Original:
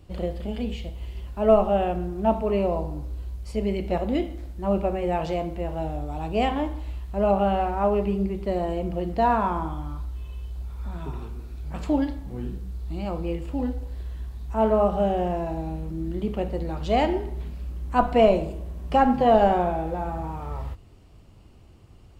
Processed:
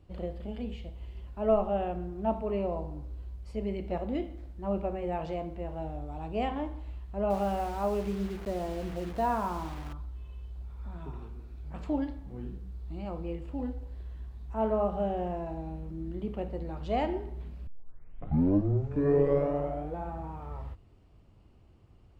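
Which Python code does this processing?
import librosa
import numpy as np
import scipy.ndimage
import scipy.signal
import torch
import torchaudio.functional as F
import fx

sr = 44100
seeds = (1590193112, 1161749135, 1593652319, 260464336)

y = fx.quant_dither(x, sr, seeds[0], bits=6, dither='none', at=(7.3, 9.93))
y = fx.edit(y, sr, fx.tape_start(start_s=17.67, length_s=2.37), tone=tone)
y = fx.high_shelf(y, sr, hz=4300.0, db=-10.5)
y = F.gain(torch.from_numpy(y), -7.5).numpy()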